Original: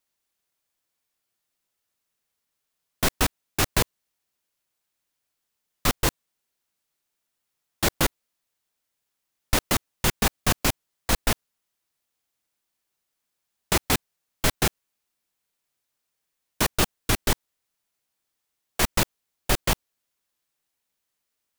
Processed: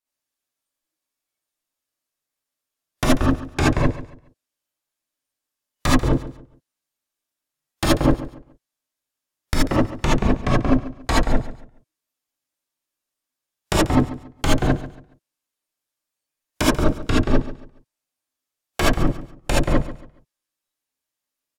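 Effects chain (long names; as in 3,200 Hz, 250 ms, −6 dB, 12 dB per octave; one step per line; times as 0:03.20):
noise reduction from a noise print of the clip's start 15 dB
treble cut that deepens with the level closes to 310 Hz, closed at −18.5 dBFS
downward compressor, threshold −21 dBFS, peak gain reduction 5.5 dB
on a send: repeating echo 140 ms, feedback 29%, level −15 dB
on the sum: reverb whose tail is shaped and stops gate 100 ms rising, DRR −6.5 dB
level +4 dB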